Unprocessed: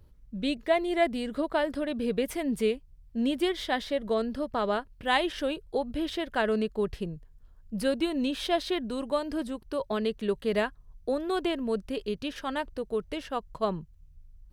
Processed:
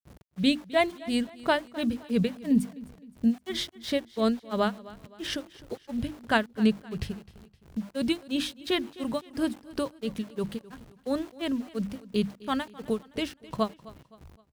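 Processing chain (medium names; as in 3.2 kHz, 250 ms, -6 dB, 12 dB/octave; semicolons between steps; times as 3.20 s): granulator 261 ms, grains 2.9 per s, pitch spread up and down by 0 st; tone controls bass +13 dB, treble +4 dB; hum notches 50/100/150/200/250/300/350 Hz; dynamic bell 420 Hz, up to -6 dB, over -39 dBFS, Q 0.75; small samples zeroed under -50 dBFS; gate -49 dBFS, range -7 dB; high-pass 120 Hz 12 dB/octave; feedback delay 259 ms, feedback 42%, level -19.5 dB; trim +6.5 dB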